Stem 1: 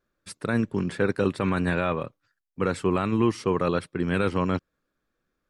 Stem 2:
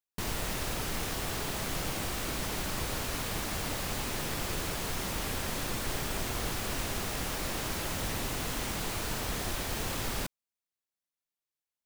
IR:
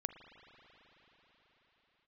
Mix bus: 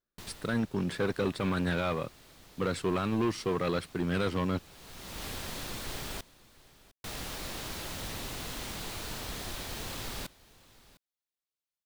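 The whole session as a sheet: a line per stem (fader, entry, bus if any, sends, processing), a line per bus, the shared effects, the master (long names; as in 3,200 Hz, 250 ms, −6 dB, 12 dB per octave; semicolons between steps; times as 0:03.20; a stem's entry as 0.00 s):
−10.0 dB, 0.00 s, no send, no echo send, leveller curve on the samples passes 2
−5.5 dB, 0.00 s, muted 0:06.21–0:07.04, no send, echo send −20.5 dB, automatic ducking −19 dB, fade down 0.60 s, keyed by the first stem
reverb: not used
echo: single-tap delay 705 ms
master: parametric band 3,900 Hz +4.5 dB 0.8 octaves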